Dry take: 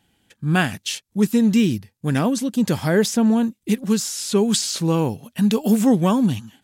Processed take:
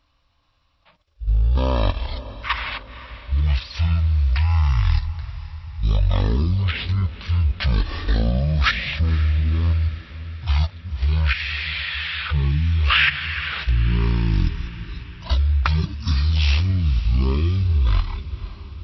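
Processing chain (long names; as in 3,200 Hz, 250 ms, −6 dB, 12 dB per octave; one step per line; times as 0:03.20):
output level in coarse steps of 12 dB
high-shelf EQ 3,400 Hz +10.5 dB
change of speed 0.352×
low-shelf EQ 89 Hz +11.5 dB
feedback delay with all-pass diffusion 508 ms, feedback 59%, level −15 dB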